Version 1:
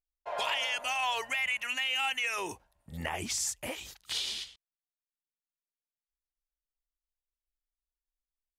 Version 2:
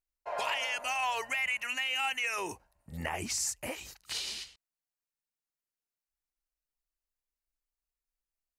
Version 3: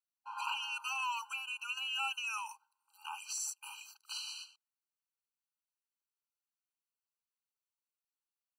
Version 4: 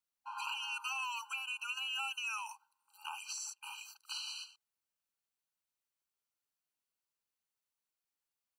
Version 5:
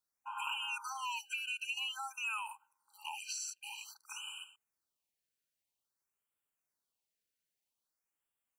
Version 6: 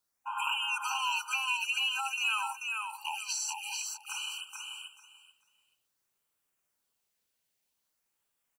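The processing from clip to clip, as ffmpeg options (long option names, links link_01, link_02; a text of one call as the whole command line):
ffmpeg -i in.wav -af "equalizer=frequency=3400:width=6.5:gain=-11" out.wav
ffmpeg -i in.wav -af "afftfilt=real='re*eq(mod(floor(b*sr/1024/790),2),1)':imag='im*eq(mod(floor(b*sr/1024/790),2),1)':win_size=1024:overlap=0.75,volume=-3dB" out.wav
ffmpeg -i in.wav -filter_complex "[0:a]acrossover=split=2000|5900[link_01][link_02][link_03];[link_01]acompressor=threshold=-44dB:ratio=4[link_04];[link_02]acompressor=threshold=-42dB:ratio=4[link_05];[link_03]acompressor=threshold=-55dB:ratio=4[link_06];[link_04][link_05][link_06]amix=inputs=3:normalize=0,volume=2dB" out.wav
ffmpeg -i in.wav -af "afftfilt=real='re*(1-between(b*sr/1024,950*pow(5200/950,0.5+0.5*sin(2*PI*0.51*pts/sr))/1.41,950*pow(5200/950,0.5+0.5*sin(2*PI*0.51*pts/sr))*1.41))':imag='im*(1-between(b*sr/1024,950*pow(5200/950,0.5+0.5*sin(2*PI*0.51*pts/sr))/1.41,950*pow(5200/950,0.5+0.5*sin(2*PI*0.51*pts/sr))*1.41))':win_size=1024:overlap=0.75,volume=1.5dB" out.wav
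ffmpeg -i in.wav -af "aecho=1:1:437|874|1311:0.631|0.114|0.0204,volume=6.5dB" out.wav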